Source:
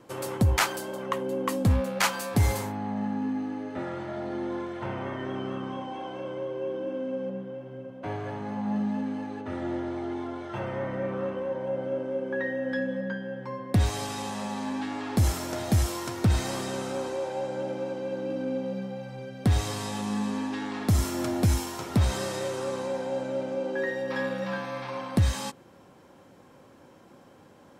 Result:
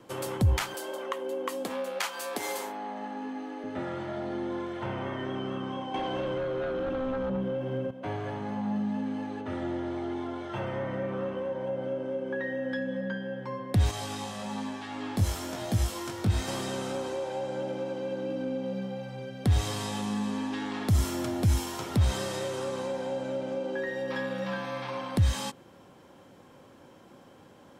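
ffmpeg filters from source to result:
ffmpeg -i in.wav -filter_complex "[0:a]asettb=1/sr,asplit=3[link_01][link_02][link_03];[link_01]atrim=end=0.744[link_04];[link_02]atrim=start=0.74:end=3.64,asetpts=PTS-STARTPTS,afade=type=in:duration=0.004:curve=qsin,afade=type=out:start_time=2.896:duration=0.004:curve=qsin,highpass=frequency=320:width=0.5412,highpass=frequency=320:width=1.3066[link_05];[link_03]atrim=start=3.636[link_06];[link_04][link_05]acrossfade=duration=0.004:curve1=hsin:curve2=qsin[link_07];[link_07][link_06]acrossfade=duration=0.004:curve1=qsin:curve2=hsin,asettb=1/sr,asplit=3[link_08][link_09][link_10];[link_08]atrim=end=5.944[link_11];[link_09]atrim=start=5.94:end=7.91,asetpts=PTS-STARTPTS,afade=type=in:duration=0.004:curve=qsin,afade=type=out:start_time=1.966:duration=0.004:curve=qsin,aeval=exprs='0.0794*sin(PI/2*2.24*val(0)/0.0794)':channel_layout=same[link_12];[link_10]atrim=start=7.906[link_13];[link_11][link_12]acrossfade=duration=0.004:curve1=hsin:curve2=qsin[link_14];[link_14][link_13]acrossfade=duration=0.004:curve1=qsin:curve2=hsin,asettb=1/sr,asplit=3[link_15][link_16][link_17];[link_15]atrim=end=13.914[link_18];[link_16]atrim=start=13.91:end=16.48,asetpts=PTS-STARTPTS,afade=type=in:duration=0.004:curve=qsin,afade=type=out:start_time=2.566:duration=0.004:curve=qsin,flanger=delay=17.5:depth=3.4:speed=1.1[link_19];[link_17]atrim=start=16.476[link_20];[link_18][link_19]acrossfade=duration=0.004:curve1=hsin:curve2=qsin[link_21];[link_21][link_20]acrossfade=duration=0.004:curve1=qsin:curve2=hsin,equalizer=frequency=3200:width_type=o:width=0.3:gain=4,acrossover=split=160[link_22][link_23];[link_23]acompressor=threshold=-29dB:ratio=6[link_24];[link_22][link_24]amix=inputs=2:normalize=0" out.wav

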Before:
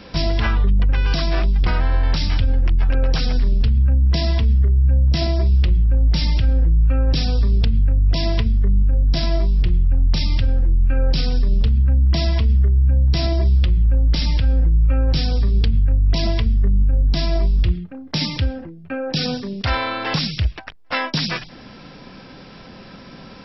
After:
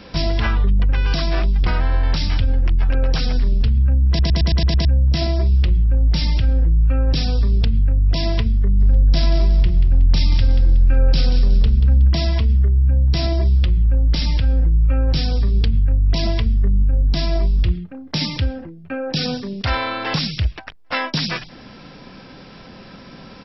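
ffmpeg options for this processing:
ffmpeg -i in.wav -filter_complex "[0:a]asplit=3[link_01][link_02][link_03];[link_01]afade=type=out:start_time=8.79:duration=0.02[link_04];[link_02]aecho=1:1:184|368|552|736:0.316|0.101|0.0324|0.0104,afade=type=in:start_time=8.79:duration=0.02,afade=type=out:start_time=12.08:duration=0.02[link_05];[link_03]afade=type=in:start_time=12.08:duration=0.02[link_06];[link_04][link_05][link_06]amix=inputs=3:normalize=0,asplit=8[link_07][link_08][link_09][link_10][link_11][link_12][link_13][link_14];[link_07]atrim=end=4.192[link_15];[link_08]atrim=start=4.078:end=4.192[link_16];[link_09]atrim=start=4.078:end=4.192[link_17];[link_10]atrim=start=4.078:end=4.192[link_18];[link_11]atrim=start=4.078:end=4.192[link_19];[link_12]atrim=start=4.078:end=4.192[link_20];[link_13]atrim=start=4.078:end=4.192[link_21];[link_14]atrim=start=4.848[link_22];[link_15][link_16]acrossfade=duration=0.004:curve1=hsin:curve2=hsin[link_23];[link_23][link_17]acrossfade=duration=0.004:curve1=hsin:curve2=hsin[link_24];[link_24][link_18]acrossfade=duration=0.004:curve1=hsin:curve2=hsin[link_25];[link_25][link_19]acrossfade=duration=0.004:curve1=hsin:curve2=hsin[link_26];[link_26][link_20]acrossfade=duration=0.004:curve1=hsin:curve2=hsin[link_27];[link_27][link_21]acrossfade=duration=0.004:curve1=hsin:curve2=hsin[link_28];[link_28][link_22]acrossfade=duration=0.004:curve1=hsin:curve2=hsin" out.wav

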